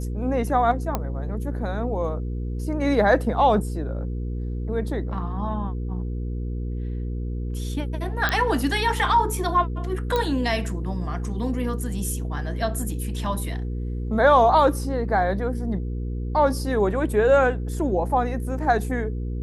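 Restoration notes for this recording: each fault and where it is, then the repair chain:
hum 60 Hz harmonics 8 -28 dBFS
0.95 s: pop -10 dBFS
8.29 s: pop -8 dBFS
10.16 s: pop -11 dBFS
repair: de-click; de-hum 60 Hz, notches 8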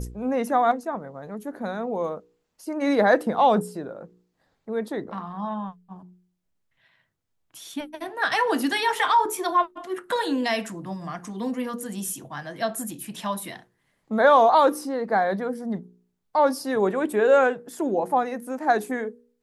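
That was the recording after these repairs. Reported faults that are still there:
nothing left

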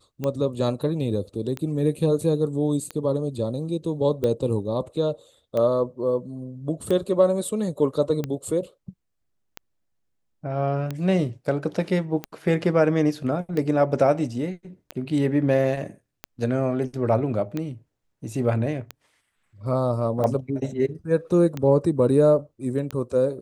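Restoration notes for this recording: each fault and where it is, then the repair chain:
tick 45 rpm -15 dBFS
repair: de-click

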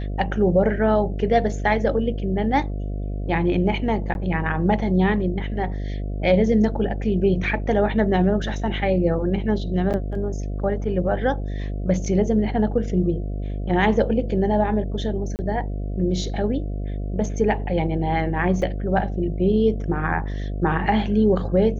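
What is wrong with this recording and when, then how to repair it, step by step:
buzz 50 Hz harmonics 14 -27 dBFS
4.14–4.15 s: dropout 11 ms
9.93–9.94 s: dropout 8.6 ms
15.36–15.39 s: dropout 29 ms
18.62 s: dropout 3.5 ms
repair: de-hum 50 Hz, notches 14; interpolate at 4.14 s, 11 ms; interpolate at 9.93 s, 8.6 ms; interpolate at 15.36 s, 29 ms; interpolate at 18.62 s, 3.5 ms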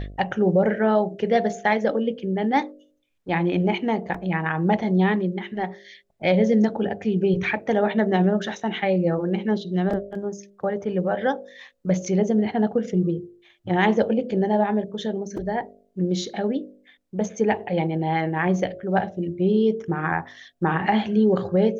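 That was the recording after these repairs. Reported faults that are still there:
nothing left

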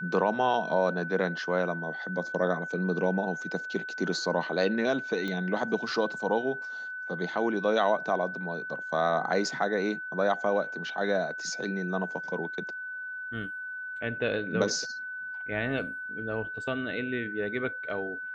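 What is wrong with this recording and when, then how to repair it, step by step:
whine 1.5 kHz -35 dBFS
5.28 s: pop -21 dBFS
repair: de-click; band-stop 1.5 kHz, Q 30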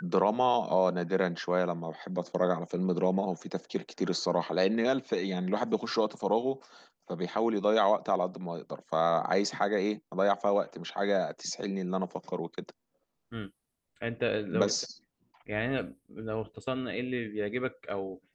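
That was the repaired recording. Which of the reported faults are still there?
nothing left

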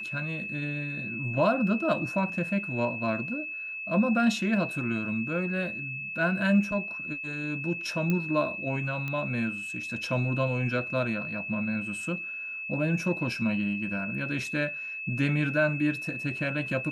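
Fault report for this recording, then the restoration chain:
whine 2.6 kHz -34 dBFS
8.10 s: pop -16 dBFS
9.08 s: pop -21 dBFS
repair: de-click; band-stop 2.6 kHz, Q 30

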